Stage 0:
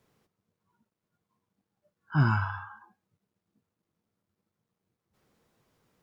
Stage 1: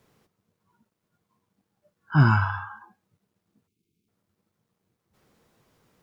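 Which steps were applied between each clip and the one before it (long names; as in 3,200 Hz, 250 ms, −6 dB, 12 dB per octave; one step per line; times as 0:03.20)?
time-frequency box erased 0:03.68–0:04.08, 470–2,100 Hz
level +6 dB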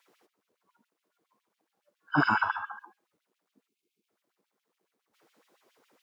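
auto-filter high-pass sine 7.2 Hz 280–3,100 Hz
level −2 dB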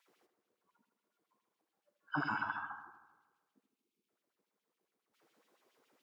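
downward compressor, threshold −26 dBFS, peak gain reduction 7.5 dB
on a send: bucket-brigade delay 78 ms, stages 1,024, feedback 63%, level −10 dB
on the sum: level −6.5 dB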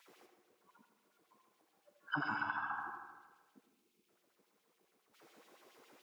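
downward compressor 12 to 1, threshold −44 dBFS, peak gain reduction 13.5 dB
on a send at −7 dB: convolution reverb RT60 1.1 s, pre-delay 78 ms
on the sum: level +9.5 dB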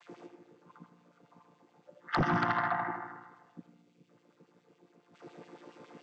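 channel vocoder with a chord as carrier major triad, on A#2
sine wavefolder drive 8 dB, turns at −22 dBFS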